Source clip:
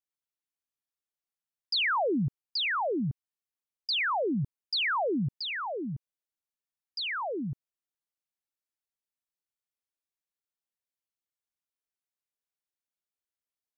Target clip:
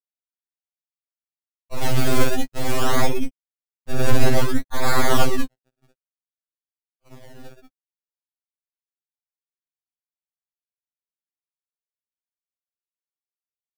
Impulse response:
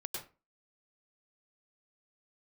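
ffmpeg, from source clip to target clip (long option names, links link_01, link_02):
-filter_complex "[0:a]agate=range=-23dB:threshold=-31dB:ratio=16:detection=peak[link_01];[1:a]atrim=start_sample=2205,afade=type=out:start_time=0.21:duration=0.01,atrim=end_sample=9702[link_02];[link_01][link_02]afir=irnorm=-1:irlink=0,dynaudnorm=framelen=280:gausssize=13:maxgain=12.5dB,acrusher=samples=29:mix=1:aa=0.000001:lfo=1:lforange=29:lforate=0.56,asplit=3[link_03][link_04][link_05];[link_03]afade=type=out:start_time=4.04:duration=0.02[link_06];[link_04]asubboost=boost=5:cutoff=87,afade=type=in:start_time=4.04:duration=0.02,afade=type=out:start_time=4.59:duration=0.02[link_07];[link_05]afade=type=in:start_time=4.59:duration=0.02[link_08];[link_06][link_07][link_08]amix=inputs=3:normalize=0,aeval=exprs='sgn(val(0))*max(abs(val(0))-0.0119,0)':channel_layout=same,asettb=1/sr,asplit=3[link_09][link_10][link_11];[link_09]atrim=end=1.784[link_12];[link_10]atrim=start=1.78:end=2.79,asetpts=PTS-STARTPTS,afade=type=in:duration=0.004:curve=qsin,afade=type=out:start_time=1.006:duration=0.004:curve=qsin,highshelf=frequency=2300:gain=5[link_13];[link_11]atrim=start=2.786[link_14];[link_12][link_13]acrossfade=duration=0.004:curve1=hsin:curve2=qsin[link_15];[link_15][link_14]acrossfade=duration=0.004:curve1=qsin:curve2=hsin,aeval=exprs='abs(val(0))':channel_layout=same,afftfilt=real='re*2.45*eq(mod(b,6),0)':imag='im*2.45*eq(mod(b,6),0)':win_size=2048:overlap=0.75,volume=2.5dB"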